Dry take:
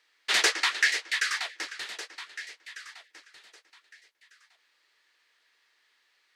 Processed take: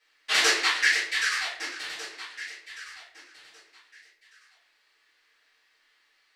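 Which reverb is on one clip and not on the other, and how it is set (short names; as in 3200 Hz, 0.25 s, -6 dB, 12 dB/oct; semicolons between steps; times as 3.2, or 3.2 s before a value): shoebox room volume 53 m³, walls mixed, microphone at 2.4 m; gain -8.5 dB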